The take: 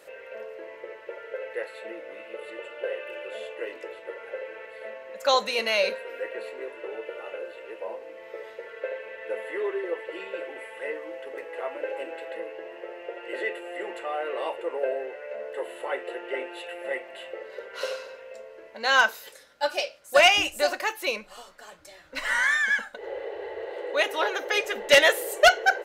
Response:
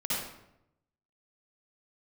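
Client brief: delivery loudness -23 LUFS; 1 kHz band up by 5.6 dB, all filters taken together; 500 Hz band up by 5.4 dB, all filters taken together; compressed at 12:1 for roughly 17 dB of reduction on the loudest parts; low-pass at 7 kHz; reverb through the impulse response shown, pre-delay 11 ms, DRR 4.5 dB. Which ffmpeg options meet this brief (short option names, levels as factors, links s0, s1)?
-filter_complex "[0:a]lowpass=7000,equalizer=f=500:t=o:g=4.5,equalizer=f=1000:t=o:g=6,acompressor=threshold=0.0562:ratio=12,asplit=2[s0][s1];[1:a]atrim=start_sample=2205,adelay=11[s2];[s1][s2]afir=irnorm=-1:irlink=0,volume=0.266[s3];[s0][s3]amix=inputs=2:normalize=0,volume=2.37"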